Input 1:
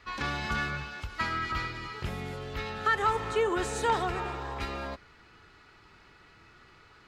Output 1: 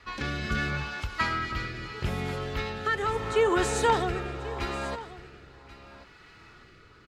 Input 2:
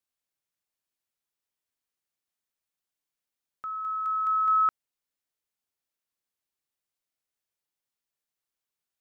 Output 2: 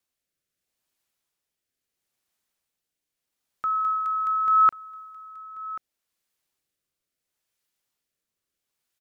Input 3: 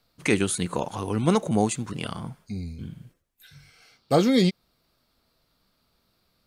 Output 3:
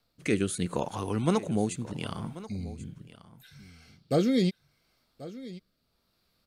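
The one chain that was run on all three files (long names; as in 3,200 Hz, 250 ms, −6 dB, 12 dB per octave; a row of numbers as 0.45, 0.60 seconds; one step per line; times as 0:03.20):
rotating-speaker cabinet horn 0.75 Hz
single-tap delay 1,086 ms −17 dB
normalise the peak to −12 dBFS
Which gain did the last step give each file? +5.5, +9.5, −2.0 decibels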